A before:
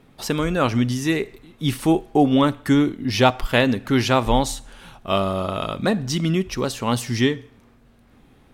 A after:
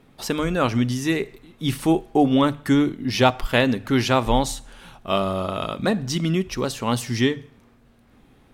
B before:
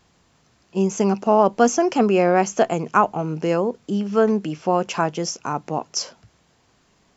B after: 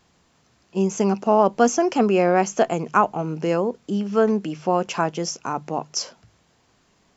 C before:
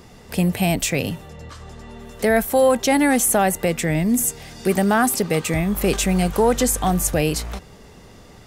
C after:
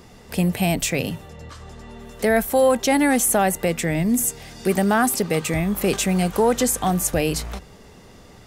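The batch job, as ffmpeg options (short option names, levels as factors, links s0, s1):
-af "bandreject=f=50:t=h:w=6,bandreject=f=100:t=h:w=6,bandreject=f=150:t=h:w=6,volume=0.891"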